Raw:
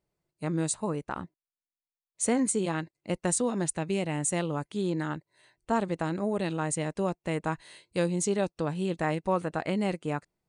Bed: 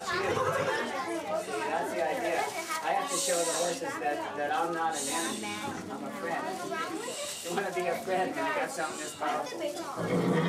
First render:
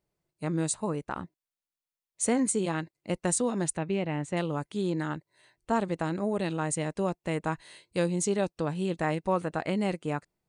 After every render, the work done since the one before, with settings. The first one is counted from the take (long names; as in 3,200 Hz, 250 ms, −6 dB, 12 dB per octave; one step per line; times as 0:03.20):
0:03.77–0:04.37: low-pass filter 3,000 Hz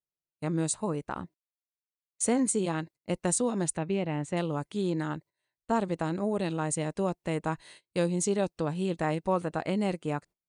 dynamic equaliser 1,900 Hz, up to −3 dB, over −43 dBFS, Q 1.4
noise gate −49 dBFS, range −22 dB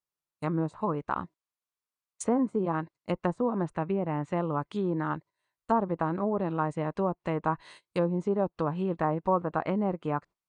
treble cut that deepens with the level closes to 950 Hz, closed at −24 dBFS
parametric band 1,100 Hz +9 dB 0.78 octaves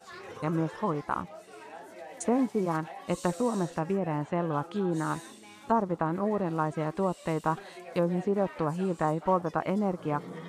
mix in bed −14.5 dB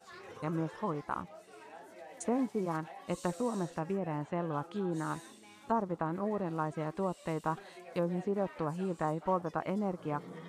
level −5.5 dB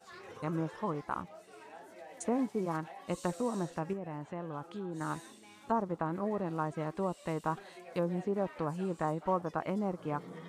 0:03.93–0:05.01: downward compressor 1.5 to 1, threshold −45 dBFS